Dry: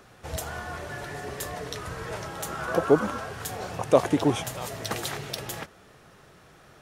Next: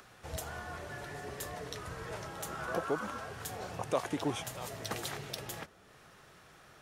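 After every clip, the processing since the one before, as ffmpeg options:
-filter_complex "[0:a]acrossover=split=810[s0][s1];[s0]alimiter=limit=0.133:level=0:latency=1:release=377[s2];[s1]acompressor=mode=upward:threshold=0.00501:ratio=2.5[s3];[s2][s3]amix=inputs=2:normalize=0,volume=0.447"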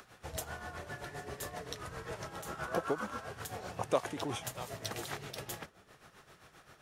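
-af "tremolo=f=7.6:d=0.66,volume=1.26"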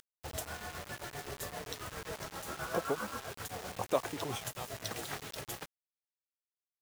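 -af "flanger=delay=1.4:depth=3.1:regen=-73:speed=0.69:shape=triangular,acrusher=bits=7:mix=0:aa=0.000001,volume=1.58"

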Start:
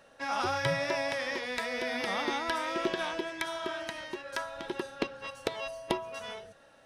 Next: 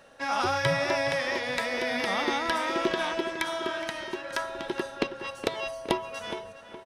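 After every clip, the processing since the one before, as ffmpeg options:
-filter_complex "[0:a]asplit=2[s0][s1];[s1]adelay=417,lowpass=f=2700:p=1,volume=0.299,asplit=2[s2][s3];[s3]adelay=417,lowpass=f=2700:p=1,volume=0.41,asplit=2[s4][s5];[s5]adelay=417,lowpass=f=2700:p=1,volume=0.41,asplit=2[s6][s7];[s7]adelay=417,lowpass=f=2700:p=1,volume=0.41[s8];[s0][s2][s4][s6][s8]amix=inputs=5:normalize=0,volume=1.58"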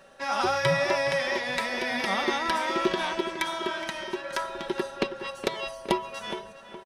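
-af "aecho=1:1:5.2:0.5"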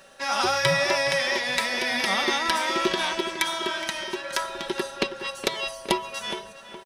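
-af "highshelf=f=2400:g=9.5"

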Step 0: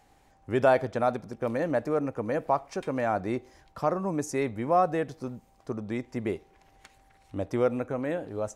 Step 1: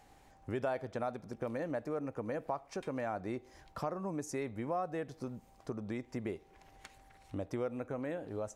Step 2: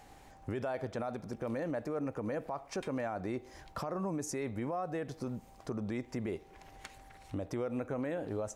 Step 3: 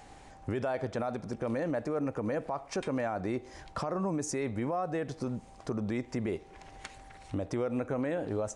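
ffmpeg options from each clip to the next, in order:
-af "acompressor=threshold=0.0112:ratio=2.5"
-af "alimiter=level_in=2.99:limit=0.0631:level=0:latency=1:release=34,volume=0.335,volume=1.88"
-af "aresample=22050,aresample=44100,volume=1.58"

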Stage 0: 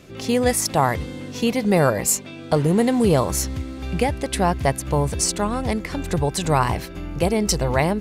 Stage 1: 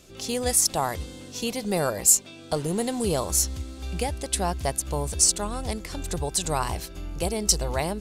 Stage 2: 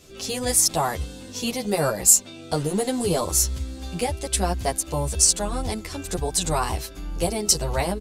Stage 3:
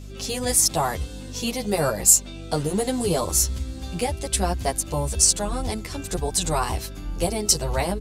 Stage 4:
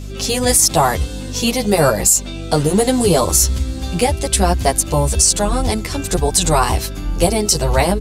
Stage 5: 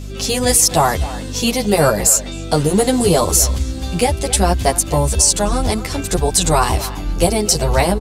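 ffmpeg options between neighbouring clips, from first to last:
-af "equalizer=f=125:t=o:w=1:g=-11,equalizer=f=250:t=o:w=1:g=-7,equalizer=f=500:t=o:w=1:g=-5,equalizer=f=1000:t=o:w=1:g=-5,equalizer=f=2000:t=o:w=1:g=-9,equalizer=f=8000:t=o:w=1:g=4"
-filter_complex "[0:a]asplit=2[s0][s1];[s1]adelay=10.1,afreqshift=-1.2[s2];[s0][s2]amix=inputs=2:normalize=1,volume=1.88"
-af "aeval=exprs='val(0)+0.0141*(sin(2*PI*50*n/s)+sin(2*PI*2*50*n/s)/2+sin(2*PI*3*50*n/s)/3+sin(2*PI*4*50*n/s)/4+sin(2*PI*5*50*n/s)/5)':c=same"
-af "alimiter=level_in=3.35:limit=0.891:release=50:level=0:latency=1,volume=0.891"
-filter_complex "[0:a]asplit=2[s0][s1];[s1]adelay=260,highpass=300,lowpass=3400,asoftclip=type=hard:threshold=0.282,volume=0.224[s2];[s0][s2]amix=inputs=2:normalize=0"

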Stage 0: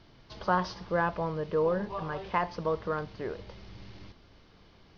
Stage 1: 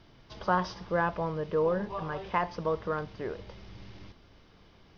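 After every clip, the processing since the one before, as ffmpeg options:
-af "bandreject=f=4300:w=13"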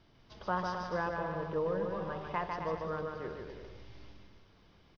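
-af "aecho=1:1:150|262.5|346.9|410.2|457.6:0.631|0.398|0.251|0.158|0.1,volume=0.447"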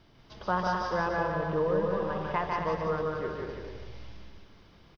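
-af "aecho=1:1:182:0.631,volume=1.68"

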